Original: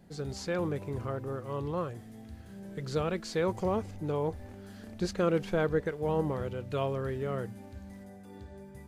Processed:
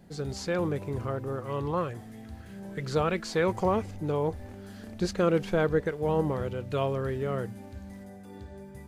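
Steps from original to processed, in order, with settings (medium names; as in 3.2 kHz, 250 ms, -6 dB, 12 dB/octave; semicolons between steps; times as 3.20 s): 1.38–3.85 s: sweeping bell 3.1 Hz 810–2500 Hz +7 dB; trim +3 dB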